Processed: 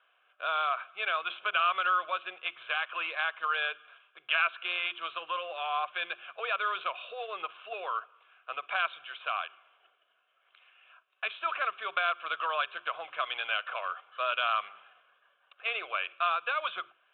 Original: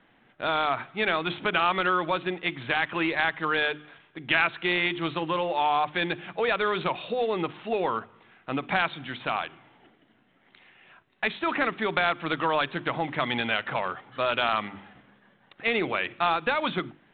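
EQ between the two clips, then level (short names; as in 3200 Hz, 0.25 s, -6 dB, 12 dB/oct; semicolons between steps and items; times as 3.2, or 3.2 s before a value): Chebyshev band-pass 850–2800 Hz, order 2; fixed phaser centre 1300 Hz, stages 8; 0.0 dB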